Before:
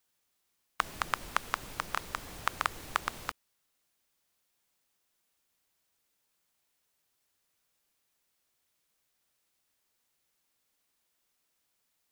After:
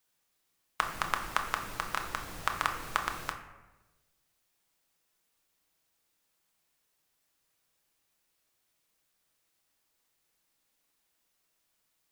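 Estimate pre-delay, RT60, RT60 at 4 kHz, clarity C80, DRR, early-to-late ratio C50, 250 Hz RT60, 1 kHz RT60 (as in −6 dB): 6 ms, 1.2 s, 0.60 s, 10.0 dB, 4.0 dB, 8.5 dB, 1.3 s, 1.0 s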